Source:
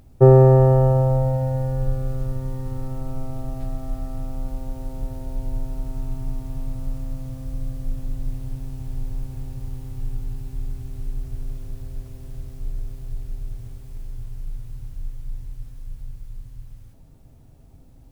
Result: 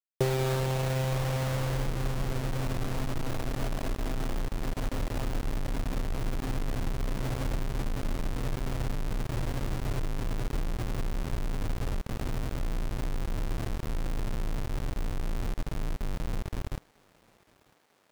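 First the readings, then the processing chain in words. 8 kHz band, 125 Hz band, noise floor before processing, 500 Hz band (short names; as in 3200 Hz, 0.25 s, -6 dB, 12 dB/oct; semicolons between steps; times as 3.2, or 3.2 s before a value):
n/a, -10.0 dB, -48 dBFS, -12.5 dB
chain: compressor 8:1, threshold -30 dBFS, peak gain reduction 22 dB; backlash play -42 dBFS; requantised 6-bit, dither none; on a send: thinning echo 0.947 s, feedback 75%, high-pass 340 Hz, level -22 dB; on the sum: gain +3.5 dB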